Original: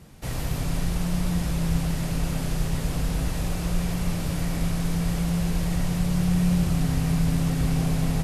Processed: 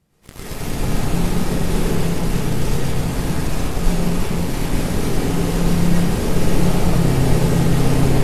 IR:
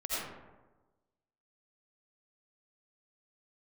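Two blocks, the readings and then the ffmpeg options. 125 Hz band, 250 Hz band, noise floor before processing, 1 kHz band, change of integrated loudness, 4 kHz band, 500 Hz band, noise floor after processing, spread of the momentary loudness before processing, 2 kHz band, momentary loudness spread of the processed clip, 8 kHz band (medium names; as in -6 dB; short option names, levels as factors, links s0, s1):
+5.5 dB, +5.5 dB, -29 dBFS, +9.5 dB, +6.0 dB, +7.0 dB, +13.0 dB, -32 dBFS, 5 LU, +8.0 dB, 6 LU, +6.0 dB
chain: -filter_complex "[0:a]bandreject=f=59.71:t=h:w=4,bandreject=f=119.42:t=h:w=4,bandreject=f=179.13:t=h:w=4,bandreject=f=238.84:t=h:w=4,bandreject=f=298.55:t=h:w=4,bandreject=f=358.26:t=h:w=4,bandreject=f=417.97:t=h:w=4,bandreject=f=477.68:t=h:w=4,bandreject=f=537.39:t=h:w=4,bandreject=f=597.1:t=h:w=4,bandreject=f=656.81:t=h:w=4,bandreject=f=716.52:t=h:w=4,bandreject=f=776.23:t=h:w=4,bandreject=f=835.94:t=h:w=4,bandreject=f=895.65:t=h:w=4,bandreject=f=955.36:t=h:w=4,bandreject=f=1015.07:t=h:w=4,bandreject=f=1074.78:t=h:w=4,bandreject=f=1134.49:t=h:w=4,bandreject=f=1194.2:t=h:w=4,bandreject=f=1253.91:t=h:w=4,bandreject=f=1313.62:t=h:w=4,bandreject=f=1373.33:t=h:w=4,bandreject=f=1433.04:t=h:w=4,bandreject=f=1492.75:t=h:w=4,bandreject=f=1552.46:t=h:w=4,bandreject=f=1612.17:t=h:w=4,aeval=exprs='0.251*(cos(1*acos(clip(val(0)/0.251,-1,1)))-cos(1*PI/2))+0.00447*(cos(3*acos(clip(val(0)/0.251,-1,1)))-cos(3*PI/2))+0.0141*(cos(4*acos(clip(val(0)/0.251,-1,1)))-cos(4*PI/2))+0.02*(cos(5*acos(clip(val(0)/0.251,-1,1)))-cos(5*PI/2))+0.0562*(cos(7*acos(clip(val(0)/0.251,-1,1)))-cos(7*PI/2))':c=same[s0];[1:a]atrim=start_sample=2205,afade=t=out:st=0.36:d=0.01,atrim=end_sample=16317,asetrate=29106,aresample=44100[s1];[s0][s1]afir=irnorm=-1:irlink=0,volume=0.891"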